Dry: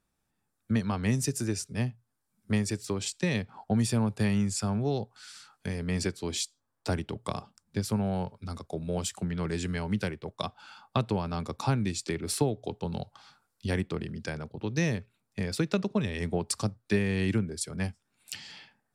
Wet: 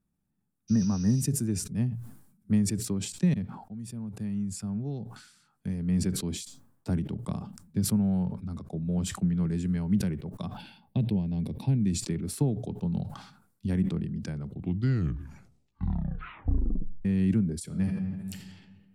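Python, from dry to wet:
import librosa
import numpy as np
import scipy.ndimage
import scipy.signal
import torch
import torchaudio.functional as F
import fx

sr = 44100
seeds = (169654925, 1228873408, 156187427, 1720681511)

y = fx.spec_repair(x, sr, seeds[0], start_s=0.71, length_s=0.48, low_hz=1900.0, high_hz=6500.0, source='after')
y = fx.high_shelf(y, sr, hz=7800.0, db=-10.5, at=(8.24, 9.23))
y = fx.fixed_phaser(y, sr, hz=3000.0, stages=4, at=(10.57, 11.81))
y = fx.reverb_throw(y, sr, start_s=17.63, length_s=0.75, rt60_s=1.8, drr_db=1.0)
y = fx.edit(y, sr, fx.fade_in_span(start_s=3.34, length_s=2.87),
    fx.tape_stop(start_s=14.26, length_s=2.79), tone=tone)
y = fx.curve_eq(y, sr, hz=(110.0, 180.0, 480.0, 5000.0, 12000.0), db=(0, 7, -8, -14, -6))
y = fx.sustainer(y, sr, db_per_s=77.0)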